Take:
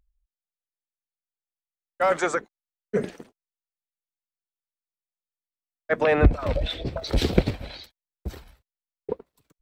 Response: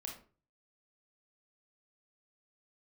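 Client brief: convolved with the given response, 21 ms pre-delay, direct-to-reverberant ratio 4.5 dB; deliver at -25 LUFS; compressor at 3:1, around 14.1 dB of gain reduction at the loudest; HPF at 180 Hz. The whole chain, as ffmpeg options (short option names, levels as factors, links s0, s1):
-filter_complex "[0:a]highpass=180,acompressor=threshold=0.02:ratio=3,asplit=2[s0][s1];[1:a]atrim=start_sample=2205,adelay=21[s2];[s1][s2]afir=irnorm=-1:irlink=0,volume=0.794[s3];[s0][s3]amix=inputs=2:normalize=0,volume=3.55"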